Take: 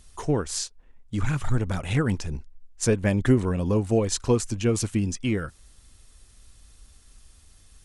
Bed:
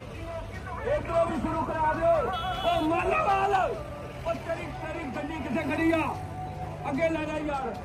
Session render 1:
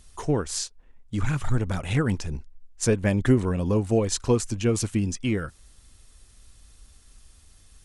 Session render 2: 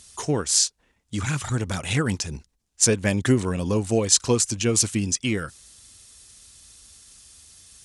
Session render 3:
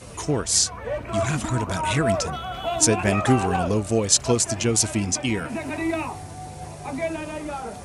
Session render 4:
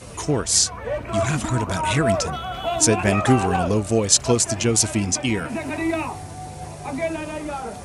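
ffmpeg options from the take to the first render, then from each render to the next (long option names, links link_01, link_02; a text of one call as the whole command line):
ffmpeg -i in.wav -af anull out.wav
ffmpeg -i in.wav -af "highpass=79,equalizer=frequency=6800:width_type=o:width=2.6:gain=11.5" out.wav
ffmpeg -i in.wav -i bed.wav -filter_complex "[1:a]volume=-1dB[link_01];[0:a][link_01]amix=inputs=2:normalize=0" out.wav
ffmpeg -i in.wav -af "volume=2dB,alimiter=limit=-1dB:level=0:latency=1" out.wav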